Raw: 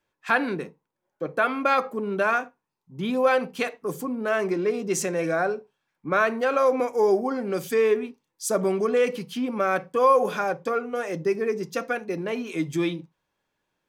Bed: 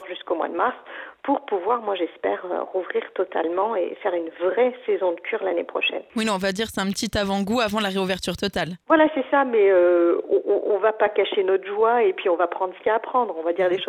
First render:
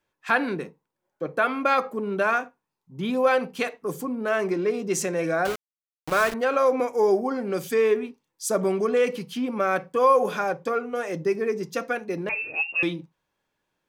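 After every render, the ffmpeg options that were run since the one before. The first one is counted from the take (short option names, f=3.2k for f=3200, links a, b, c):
-filter_complex "[0:a]asettb=1/sr,asplit=3[a][b][c];[a]atrim=end=5.454[d];[b]atrim=start=5.45:end=6.34,asetpts=PTS-STARTPTS,afade=t=in:d=0.004:c=qsin,afade=t=out:st=0.886:d=0.004:c=qsin,aeval=exprs='val(0)*gte(abs(val(0)),0.0473)':c=same[e];[c]atrim=start=6.336[f];[d][e]acrossfade=d=0.004:c1=hsin:c2=qsin[g];[g][f]acrossfade=d=0.004:c1=qsin:c2=hsin,asettb=1/sr,asplit=3[h][i][j];[h]atrim=end=12.294[k];[i]atrim=start=12.29:end=12.83,asetpts=PTS-STARTPTS,afade=t=in:d=0.004:c=qsin,afade=t=out:st=0.536:d=0.004:c=qsin,lowpass=f=2.5k:t=q:w=0.5098,lowpass=f=2.5k:t=q:w=0.6013,lowpass=f=2.5k:t=q:w=0.9,lowpass=f=2.5k:t=q:w=2.563,afreqshift=-2900[l];[j]atrim=start=12.826[m];[k][l]acrossfade=d=0.004:c1=hsin:c2=qsin[n];[n][m]acrossfade=d=0.004:c1=qsin:c2=hsin"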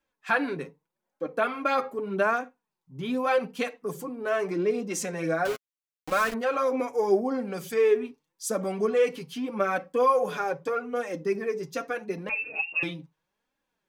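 -af "flanger=delay=3.7:depth=3.7:regen=8:speed=0.81:shape=sinusoidal"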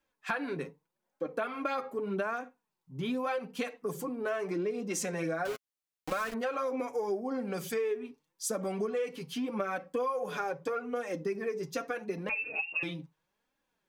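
-af "acompressor=threshold=-30dB:ratio=6"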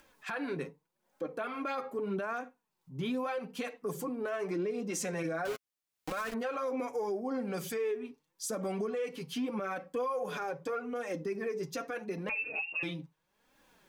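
-af "acompressor=mode=upward:threshold=-50dB:ratio=2.5,alimiter=level_in=3dB:limit=-24dB:level=0:latency=1:release=16,volume=-3dB"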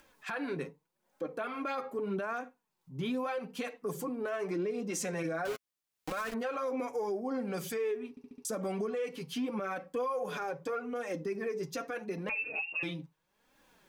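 -filter_complex "[0:a]asplit=6[a][b][c][d][e][f];[a]atrim=end=8.172[g];[b]atrim=start=8.098:end=8.172[h];[c]atrim=start=8.098:end=8.172[i];[d]atrim=start=8.098:end=8.172[j];[e]atrim=start=8.098:end=8.172[k];[f]atrim=start=8.448[l];[g][h]acrossfade=d=0.004:c1=hsin:c2=hsin[m];[m][i]acrossfade=d=0.004:c1=hsin:c2=hsin[n];[n][j]acrossfade=d=0.004:c1=hsin:c2=hsin[o];[o][k]acrossfade=d=0.004:c1=hsin:c2=hsin[p];[p][l]acrossfade=d=0.004:c1=hsin:c2=hsin"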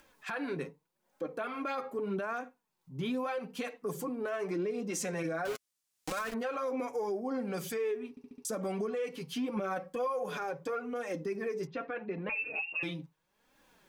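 -filter_complex "[0:a]asettb=1/sr,asplit=3[a][b][c];[a]atrim=end=5.554[d];[b]atrim=start=5.55:end=6.19,asetpts=PTS-STARTPTS,afade=t=in:d=0.004:c=qsin,afade=t=out:st=0.636:d=0.004:c=qsin,equalizer=f=7.7k:t=o:w=1.9:g=8.5[e];[c]atrim=start=6.186[f];[d][e]acrossfade=d=0.004:c1=hsin:c2=qsin[g];[g][f]acrossfade=d=0.004:c1=qsin:c2=hsin,asettb=1/sr,asplit=3[h][i][j];[h]atrim=end=9.564[k];[i]atrim=start=9.56:end=10.07,asetpts=PTS-STARTPTS,afade=t=in:d=0.004:c=qsin,afade=t=out:st=0.506:d=0.004:c=qsin,aecho=1:1:5.5:0.57,atrim=end_sample=22491[l];[j]atrim=start=10.066[m];[k][l]acrossfade=d=0.004:c1=hsin:c2=qsin[n];[n][m]acrossfade=d=0.004:c1=qsin:c2=hsin,asettb=1/sr,asplit=3[o][p][q];[o]atrim=end=11.674[r];[p]atrim=start=11.67:end=12.32,asetpts=PTS-STARTPTS,afade=t=in:d=0.004:c=qsin,afade=t=out:st=0.646:d=0.004:c=qsin,lowpass=f=3.1k:w=0.5412,lowpass=f=3.1k:w=1.3066[s];[q]atrim=start=12.316[t];[r][s]acrossfade=d=0.004:c1=hsin:c2=qsin[u];[u][t]acrossfade=d=0.004:c1=qsin:c2=hsin"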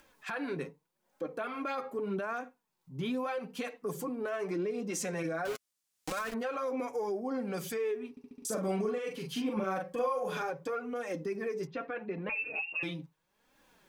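-filter_complex "[0:a]asettb=1/sr,asplit=3[a][b][c];[a]atrim=end=8.364[d];[b]atrim=start=8.36:end=10.5,asetpts=PTS-STARTPTS,afade=t=in:d=0.004:c=qsin,afade=t=out:st=2.136:d=0.004:c=qsin,asplit=2[e][f];[f]adelay=42,volume=-3.5dB[g];[e][g]amix=inputs=2:normalize=0,atrim=end_sample=94374[h];[c]atrim=start=10.496[i];[d][h]acrossfade=d=0.004:c1=hsin:c2=qsin[j];[j][i]acrossfade=d=0.004:c1=qsin:c2=hsin"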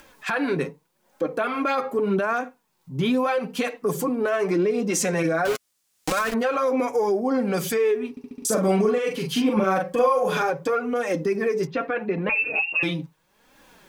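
-af "volume=12dB"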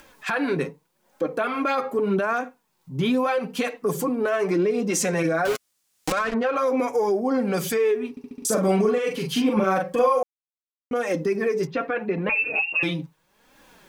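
-filter_complex "[0:a]asettb=1/sr,asplit=3[a][b][c];[a]atrim=end=6.124[d];[b]atrim=start=6.12:end=6.56,asetpts=PTS-STARTPTS,afade=t=in:d=0.004:c=qsin,afade=t=out:st=0.436:d=0.004:c=qsin,adynamicsmooth=sensitivity=1:basefreq=3.7k[e];[c]atrim=start=6.556[f];[d][e]acrossfade=d=0.004:c1=hsin:c2=qsin[g];[g][f]acrossfade=d=0.004:c1=qsin:c2=hsin,asplit=3[h][i][j];[h]atrim=end=10.23,asetpts=PTS-STARTPTS,afade=t=out:st=10.226:d=0.004:c=hsin[k];[i]atrim=start=10.23:end=10.91,asetpts=PTS-STARTPTS,volume=0[l];[j]atrim=start=10.91,asetpts=PTS-STARTPTS,afade=t=in:d=0.004:c=hsin[m];[k][l][m]concat=n=3:v=0:a=1"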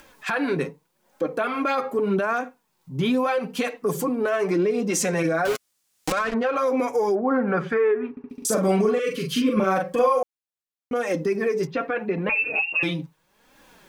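-filter_complex "[0:a]asettb=1/sr,asplit=3[a][b][c];[a]atrim=end=7.154[d];[b]atrim=start=7.15:end=8.3,asetpts=PTS-STARTPTS,afade=t=in:d=0.004:c=qsin,afade=t=out:st=1.146:d=0.004:c=qsin,lowpass=f=1.5k:t=q:w=2.6[e];[c]atrim=start=8.296[f];[d][e]acrossfade=d=0.004:c1=hsin:c2=qsin[g];[g][f]acrossfade=d=0.004:c1=qsin:c2=hsin,asettb=1/sr,asplit=3[h][i][j];[h]atrim=end=8.994[k];[i]atrim=start=8.99:end=9.6,asetpts=PTS-STARTPTS,afade=t=in:d=0.004:c=qsin,afade=t=out:st=0.606:d=0.004:c=qsin,asuperstop=centerf=830:order=20:qfactor=2.3[l];[j]atrim=start=9.596[m];[k][l]acrossfade=d=0.004:c1=hsin:c2=qsin[n];[n][m]acrossfade=d=0.004:c1=qsin:c2=hsin"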